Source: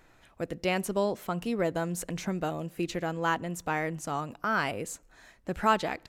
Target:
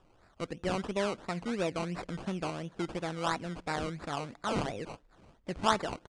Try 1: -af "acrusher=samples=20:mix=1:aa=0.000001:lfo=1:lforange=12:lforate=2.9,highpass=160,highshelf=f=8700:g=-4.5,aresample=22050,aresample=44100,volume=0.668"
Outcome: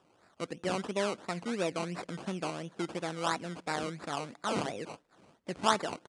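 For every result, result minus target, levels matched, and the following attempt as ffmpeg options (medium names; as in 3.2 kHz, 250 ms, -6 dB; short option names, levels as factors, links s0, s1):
8 kHz band +3.5 dB; 125 Hz band -2.5 dB
-af "acrusher=samples=20:mix=1:aa=0.000001:lfo=1:lforange=12:lforate=2.9,highpass=160,highshelf=f=8700:g=-13,aresample=22050,aresample=44100,volume=0.668"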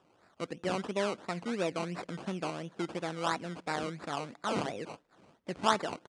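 125 Hz band -2.5 dB
-af "acrusher=samples=20:mix=1:aa=0.000001:lfo=1:lforange=12:lforate=2.9,highshelf=f=8700:g=-13,aresample=22050,aresample=44100,volume=0.668"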